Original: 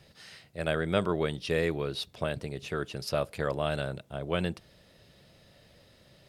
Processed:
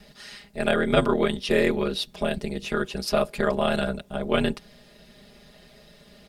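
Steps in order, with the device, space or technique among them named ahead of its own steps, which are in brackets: ring-modulated robot voice (ring modulator 60 Hz; comb 4.9 ms, depth 87%); 1.9–2.67 dynamic EQ 1200 Hz, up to -5 dB, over -51 dBFS, Q 1.4; gain +7.5 dB

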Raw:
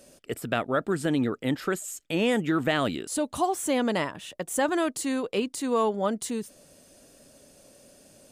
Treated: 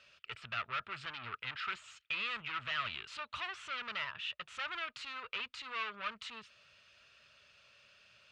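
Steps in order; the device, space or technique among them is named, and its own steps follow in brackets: scooped metal amplifier (tube stage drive 31 dB, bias 0.3; speaker cabinet 98–3800 Hz, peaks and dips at 170 Hz -7 dB, 270 Hz -6 dB, 520 Hz -7 dB, 770 Hz -9 dB, 1300 Hz +9 dB, 2600 Hz +7 dB; passive tone stack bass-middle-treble 10-0-10); gain +4 dB

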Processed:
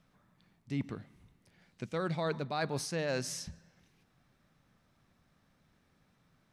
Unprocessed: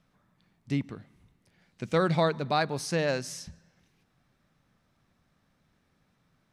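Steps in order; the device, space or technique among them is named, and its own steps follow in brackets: compression on the reversed sound (reverse; compressor 12:1, threshold -30 dBFS, peak gain reduction 11 dB; reverse)

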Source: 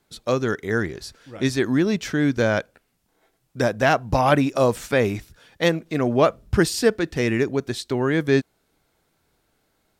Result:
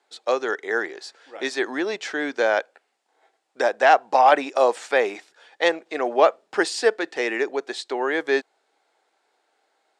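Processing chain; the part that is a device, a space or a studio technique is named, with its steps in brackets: phone speaker on a table (speaker cabinet 380–8100 Hz, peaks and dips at 800 Hz +8 dB, 1800 Hz +3 dB, 5900 Hz -4 dB)

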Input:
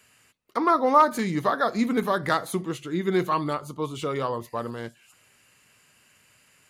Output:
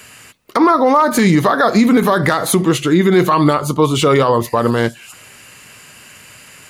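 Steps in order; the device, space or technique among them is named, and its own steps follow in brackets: loud club master (compressor 2:1, threshold -25 dBFS, peak gain reduction 7.5 dB; hard clip -14 dBFS, distortion -38 dB; maximiser +22 dB); gain -2.5 dB

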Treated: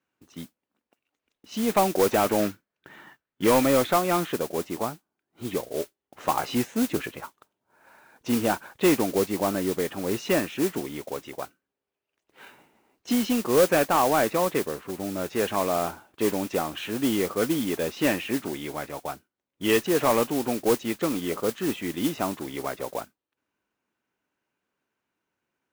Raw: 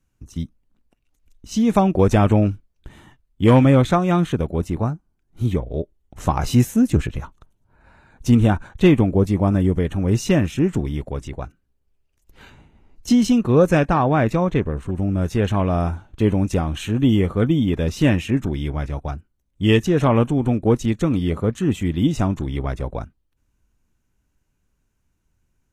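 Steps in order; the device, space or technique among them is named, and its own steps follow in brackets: carbon microphone (BPF 380–3300 Hz; soft clip -11.5 dBFS, distortion -17 dB; modulation noise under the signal 12 dB); 2.4–3.47 fifteen-band EQ 160 Hz +6 dB, 1600 Hz +7 dB, 10000 Hz -5 dB

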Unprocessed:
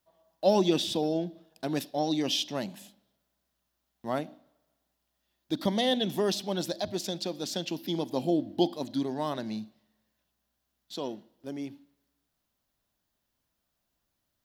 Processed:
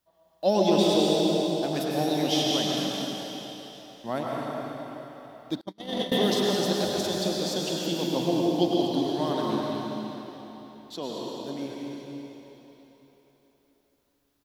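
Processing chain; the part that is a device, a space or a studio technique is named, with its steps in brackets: cave (echo 0.219 s -10.5 dB; reverb RT60 3.8 s, pre-delay 95 ms, DRR -3.5 dB); 5.61–6.12 gate -21 dBFS, range -40 dB

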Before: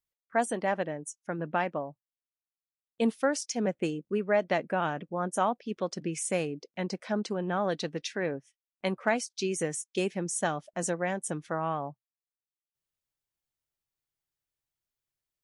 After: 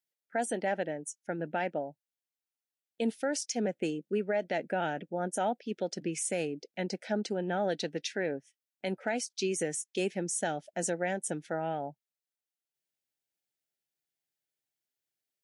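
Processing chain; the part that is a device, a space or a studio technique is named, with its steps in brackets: PA system with an anti-feedback notch (HPF 180 Hz; Butterworth band-stop 1100 Hz, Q 2.2; limiter -21.5 dBFS, peak gain reduction 6.5 dB)

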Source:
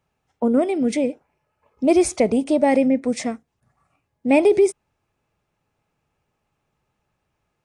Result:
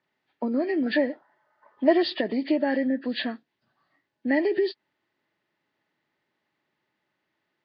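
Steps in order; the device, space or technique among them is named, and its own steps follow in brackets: hearing aid with frequency lowering (nonlinear frequency compression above 1200 Hz 1.5:1; compressor 2.5:1, threshold -20 dBFS, peak gain reduction 6.5 dB; speaker cabinet 280–5400 Hz, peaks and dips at 320 Hz +4 dB, 470 Hz -8 dB, 760 Hz -7 dB, 1200 Hz -5 dB, 1800 Hz +5 dB, 2800 Hz +5 dB); 0.86–2.03 band shelf 1000 Hz +10.5 dB

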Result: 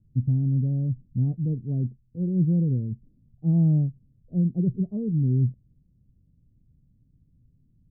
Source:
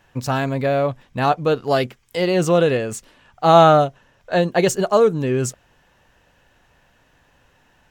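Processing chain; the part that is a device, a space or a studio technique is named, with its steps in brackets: the neighbour's flat through the wall (LPF 230 Hz 24 dB/oct; bell 120 Hz +4.5 dB 0.95 oct); 1.85–2.29 dynamic EQ 700 Hz, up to +4 dB, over -50 dBFS, Q 1.4

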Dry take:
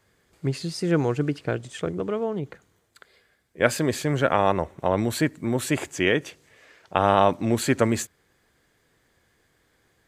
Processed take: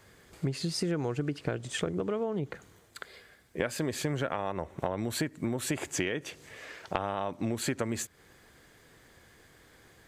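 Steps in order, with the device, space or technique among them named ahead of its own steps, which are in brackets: serial compression, leveller first (compressor 2:1, threshold -23 dBFS, peak gain reduction 6.5 dB; compressor 5:1, threshold -37 dBFS, peak gain reduction 17 dB); gain +7.5 dB

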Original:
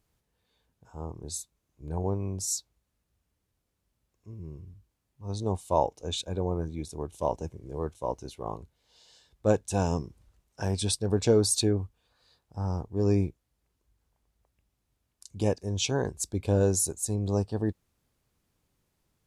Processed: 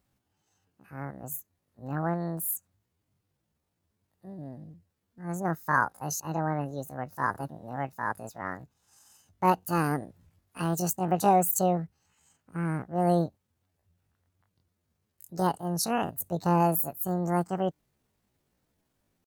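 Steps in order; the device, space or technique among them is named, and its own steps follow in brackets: chipmunk voice (pitch shift +9.5 st)

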